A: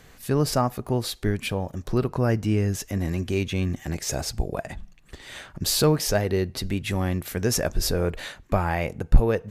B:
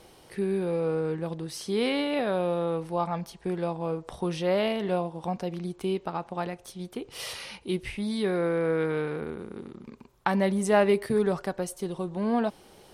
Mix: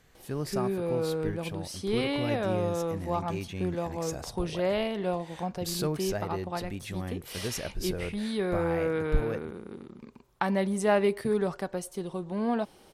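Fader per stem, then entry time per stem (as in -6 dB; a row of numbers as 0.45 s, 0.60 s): -11.0 dB, -2.5 dB; 0.00 s, 0.15 s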